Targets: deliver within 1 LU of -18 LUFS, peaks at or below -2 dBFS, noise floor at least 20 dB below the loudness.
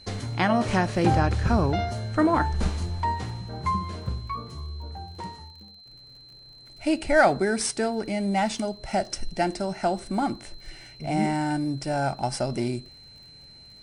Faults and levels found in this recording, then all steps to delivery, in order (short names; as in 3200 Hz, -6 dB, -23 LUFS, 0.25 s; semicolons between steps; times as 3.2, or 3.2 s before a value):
ticks 38/s; steady tone 4100 Hz; tone level -47 dBFS; loudness -26.0 LUFS; peak -7.5 dBFS; loudness target -18.0 LUFS
-> de-click; notch 4100 Hz, Q 30; gain +8 dB; limiter -2 dBFS